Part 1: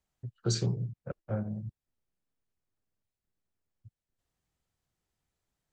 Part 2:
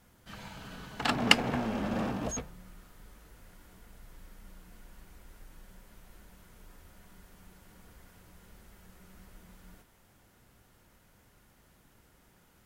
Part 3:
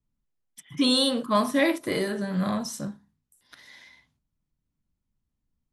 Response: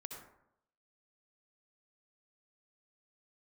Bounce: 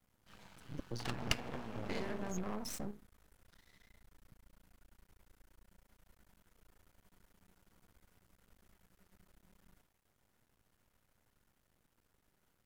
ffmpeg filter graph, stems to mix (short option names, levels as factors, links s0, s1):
-filter_complex "[0:a]adelay=450,volume=0.422[s0];[1:a]bandreject=f=170.9:t=h:w=4,bandreject=f=341.8:t=h:w=4,bandreject=f=512.7:t=h:w=4,bandreject=f=683.6:t=h:w=4,bandreject=f=854.5:t=h:w=4,bandreject=f=1025.4:t=h:w=4,bandreject=f=1196.3:t=h:w=4,bandreject=f=1367.2:t=h:w=4,bandreject=f=1538.1:t=h:w=4,bandreject=f=1709:t=h:w=4,bandreject=f=1879.9:t=h:w=4,bandreject=f=2050.8:t=h:w=4,bandreject=f=2221.7:t=h:w=4,bandreject=f=2392.6:t=h:w=4,bandreject=f=2563.5:t=h:w=4,bandreject=f=2734.4:t=h:w=4,volume=0.335[s1];[2:a]acompressor=threshold=0.0251:ratio=2.5,volume=1.12,asplit=3[s2][s3][s4];[s2]atrim=end=0.8,asetpts=PTS-STARTPTS,afade=t=out:st=0.796:d=0.004:c=hsin[s5];[s3]atrim=start=0.8:end=1.89,asetpts=PTS-STARTPTS,volume=0[s6];[s4]atrim=start=1.89,asetpts=PTS-STARTPTS,afade=t=in:d=0.004:c=hsin[s7];[s5][s6][s7]concat=n=3:v=0:a=1[s8];[s0][s8]amix=inputs=2:normalize=0,afwtdn=0.00631,acompressor=threshold=0.0141:ratio=2,volume=1[s9];[s1][s9]amix=inputs=2:normalize=0,aeval=exprs='max(val(0),0)':c=same"